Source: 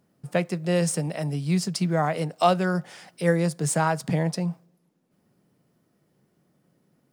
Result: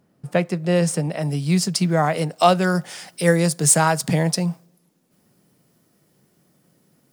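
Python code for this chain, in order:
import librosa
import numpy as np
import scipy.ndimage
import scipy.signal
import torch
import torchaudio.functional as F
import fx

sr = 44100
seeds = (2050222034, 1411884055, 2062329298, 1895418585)

y = fx.high_shelf(x, sr, hz=3600.0, db=fx.steps((0.0, -3.5), (1.23, 4.5), (2.62, 10.0)))
y = F.gain(torch.from_numpy(y), 4.5).numpy()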